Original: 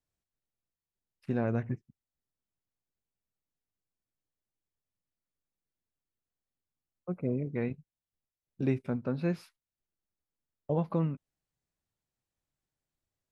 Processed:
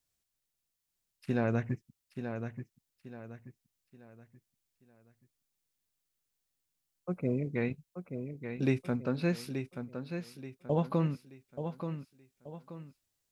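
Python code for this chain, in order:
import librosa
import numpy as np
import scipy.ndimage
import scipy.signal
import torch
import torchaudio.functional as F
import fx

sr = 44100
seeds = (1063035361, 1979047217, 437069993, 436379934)

y = fx.high_shelf(x, sr, hz=2300.0, db=11.0)
y = fx.echo_feedback(y, sr, ms=880, feedback_pct=36, wet_db=-8)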